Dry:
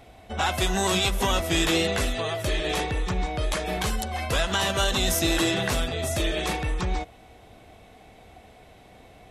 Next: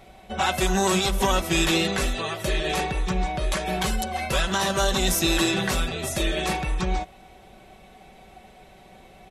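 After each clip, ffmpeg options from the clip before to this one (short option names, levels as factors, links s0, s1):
-af "aecho=1:1:5.3:0.63"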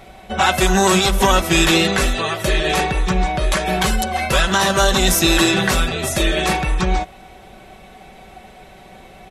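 -af "equalizer=f=1500:w=1.5:g=2.5,volume=2.24"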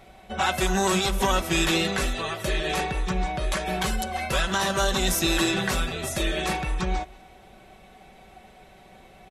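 -af "aecho=1:1:189:0.0668,volume=0.376"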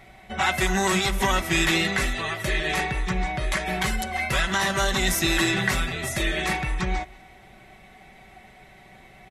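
-af "equalizer=f=125:t=o:w=0.33:g=6,equalizer=f=500:t=o:w=0.33:g=-6,equalizer=f=2000:t=o:w=0.33:g=10"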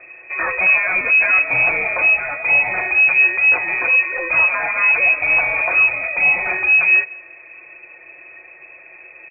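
-af "asoftclip=type=tanh:threshold=0.126,lowshelf=f=180:g=11.5,lowpass=f=2200:t=q:w=0.5098,lowpass=f=2200:t=q:w=0.6013,lowpass=f=2200:t=q:w=0.9,lowpass=f=2200:t=q:w=2.563,afreqshift=-2600,volume=1.5"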